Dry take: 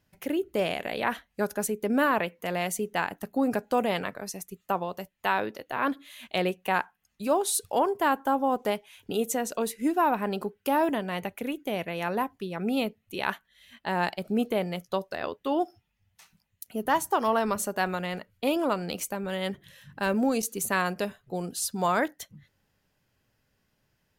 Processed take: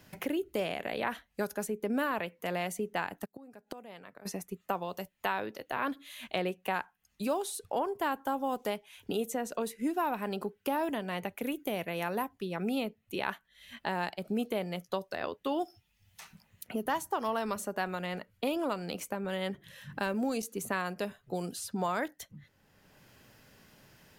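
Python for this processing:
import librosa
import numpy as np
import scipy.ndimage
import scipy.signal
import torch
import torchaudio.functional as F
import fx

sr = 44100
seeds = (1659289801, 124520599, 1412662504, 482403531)

y = fx.gate_flip(x, sr, shuts_db=-25.0, range_db=-29, at=(3.24, 4.25), fade=0.02)
y = fx.high_shelf(y, sr, hz=7600.0, db=10.0, at=(11.41, 12.29))
y = fx.band_squash(y, sr, depth_pct=70)
y = F.gain(torch.from_numpy(y), -6.0).numpy()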